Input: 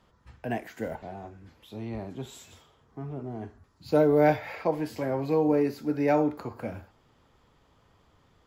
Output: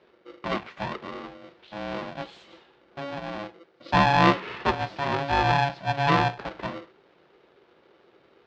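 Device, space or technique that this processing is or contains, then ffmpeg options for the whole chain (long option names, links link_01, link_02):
ring modulator pedal into a guitar cabinet: -af "aeval=exprs='val(0)*sgn(sin(2*PI*420*n/s))':channel_layout=same,highpass=84,equalizer=frequency=89:width_type=q:width=4:gain=-8,equalizer=frequency=270:width_type=q:width=4:gain=-4,equalizer=frequency=390:width_type=q:width=4:gain=9,lowpass=frequency=4200:width=0.5412,lowpass=frequency=4200:width=1.3066,volume=2.5dB"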